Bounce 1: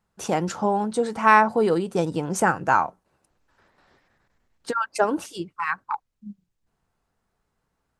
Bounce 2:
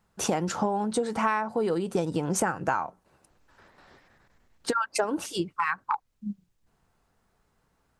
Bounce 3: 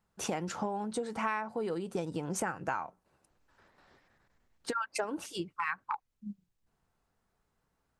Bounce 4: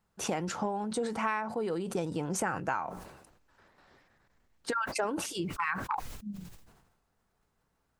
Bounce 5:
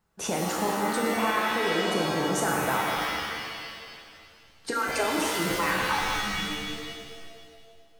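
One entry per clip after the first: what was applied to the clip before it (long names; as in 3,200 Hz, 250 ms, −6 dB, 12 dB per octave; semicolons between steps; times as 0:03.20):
downward compressor 10 to 1, threshold −28 dBFS, peak gain reduction 18 dB; level +5 dB
dynamic equaliser 2,300 Hz, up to +5 dB, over −43 dBFS, Q 1.7; level −8 dB
level that may fall only so fast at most 55 dB per second; level +1.5 dB
reverb with rising layers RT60 1.9 s, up +7 semitones, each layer −2 dB, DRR −1 dB; level +1.5 dB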